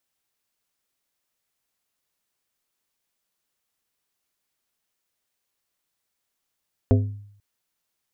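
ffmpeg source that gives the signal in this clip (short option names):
-f lavfi -i "aevalsrc='0.237*pow(10,-3*t/0.67)*sin(2*PI*102*t)+0.158*pow(10,-3*t/0.353)*sin(2*PI*255*t)+0.106*pow(10,-3*t/0.254)*sin(2*PI*408*t)+0.0708*pow(10,-3*t/0.217)*sin(2*PI*510*t)+0.0473*pow(10,-3*t/0.181)*sin(2*PI*663*t)':d=0.49:s=44100"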